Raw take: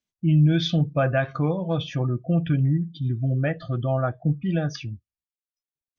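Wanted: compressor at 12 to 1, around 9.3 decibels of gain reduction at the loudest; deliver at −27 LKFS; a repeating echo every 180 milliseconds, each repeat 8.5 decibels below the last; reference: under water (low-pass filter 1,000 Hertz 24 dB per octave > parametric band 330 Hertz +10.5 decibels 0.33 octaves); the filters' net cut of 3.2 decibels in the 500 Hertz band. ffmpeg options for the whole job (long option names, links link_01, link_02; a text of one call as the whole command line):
ffmpeg -i in.wav -af "equalizer=frequency=500:width_type=o:gain=-8.5,acompressor=threshold=-24dB:ratio=12,lowpass=frequency=1000:width=0.5412,lowpass=frequency=1000:width=1.3066,equalizer=frequency=330:width_type=o:width=0.33:gain=10.5,aecho=1:1:180|360|540|720:0.376|0.143|0.0543|0.0206,volume=1.5dB" out.wav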